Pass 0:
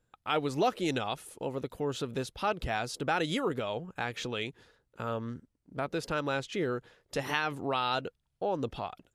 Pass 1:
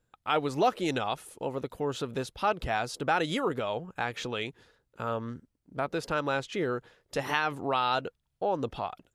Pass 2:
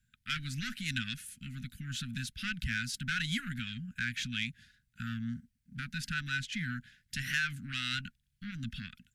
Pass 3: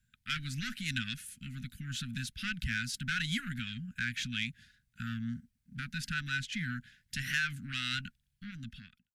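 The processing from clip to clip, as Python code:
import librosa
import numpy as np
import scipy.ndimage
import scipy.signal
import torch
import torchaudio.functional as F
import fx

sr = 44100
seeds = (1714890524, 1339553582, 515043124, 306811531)

y1 = fx.dynamic_eq(x, sr, hz=950.0, q=0.74, threshold_db=-44.0, ratio=4.0, max_db=4)
y2 = fx.tube_stage(y1, sr, drive_db=21.0, bias=0.4)
y2 = scipy.signal.sosfilt(scipy.signal.cheby1(5, 1.0, [240.0, 1500.0], 'bandstop', fs=sr, output='sos'), y2)
y2 = F.gain(torch.from_numpy(y2), 3.5).numpy()
y3 = fx.fade_out_tail(y2, sr, length_s=0.92)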